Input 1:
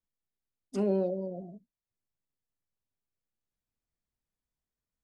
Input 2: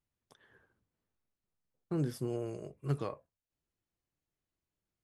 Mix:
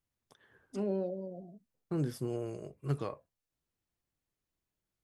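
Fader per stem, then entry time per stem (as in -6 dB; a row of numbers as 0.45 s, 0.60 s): -5.5 dB, 0.0 dB; 0.00 s, 0.00 s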